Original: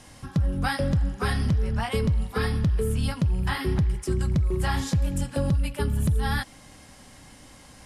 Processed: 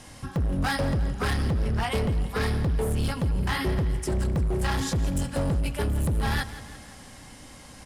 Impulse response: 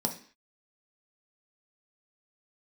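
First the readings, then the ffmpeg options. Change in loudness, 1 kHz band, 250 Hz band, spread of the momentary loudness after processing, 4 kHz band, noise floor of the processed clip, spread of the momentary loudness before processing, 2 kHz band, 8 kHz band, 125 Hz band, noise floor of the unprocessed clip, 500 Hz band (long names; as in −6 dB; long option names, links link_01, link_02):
−1.0 dB, +0.5 dB, −1.0 dB, 18 LU, +1.0 dB, −46 dBFS, 3 LU, +0.5 dB, +1.5 dB, −2.0 dB, −50 dBFS, 0.0 dB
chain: -af "asoftclip=type=hard:threshold=-25dB,aecho=1:1:170|340|510|680|850:0.178|0.0996|0.0558|0.0312|0.0175,volume=2.5dB"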